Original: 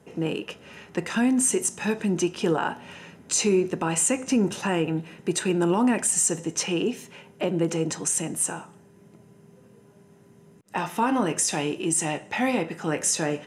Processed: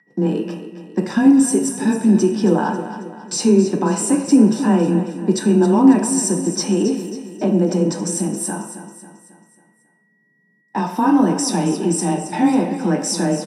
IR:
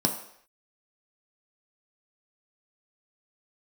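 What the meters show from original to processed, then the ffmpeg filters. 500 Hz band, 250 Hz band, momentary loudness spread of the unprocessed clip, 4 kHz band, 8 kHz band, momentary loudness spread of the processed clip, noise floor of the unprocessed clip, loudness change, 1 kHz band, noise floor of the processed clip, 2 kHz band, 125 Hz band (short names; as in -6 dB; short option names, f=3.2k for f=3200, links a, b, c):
+6.5 dB, +11.0 dB, 10 LU, +3.0 dB, +0.5 dB, 12 LU, -54 dBFS, +7.5 dB, +6.5 dB, -61 dBFS, 0.0 dB, +9.0 dB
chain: -filter_complex "[0:a]agate=range=-24dB:threshold=-40dB:ratio=16:detection=peak,aeval=exprs='val(0)+0.00316*sin(2*PI*1900*n/s)':c=same,afreqshift=18,aecho=1:1:272|544|816|1088|1360:0.266|0.125|0.0588|0.0276|0.013[a];[1:a]atrim=start_sample=2205[b];[a][b]afir=irnorm=-1:irlink=0,volume=-7.5dB"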